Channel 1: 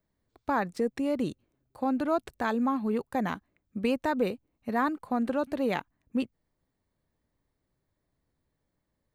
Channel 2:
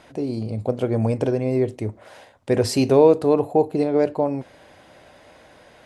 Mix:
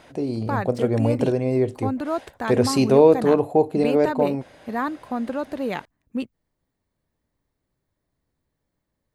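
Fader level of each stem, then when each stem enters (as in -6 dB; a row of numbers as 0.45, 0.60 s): +1.5, 0.0 dB; 0.00, 0.00 s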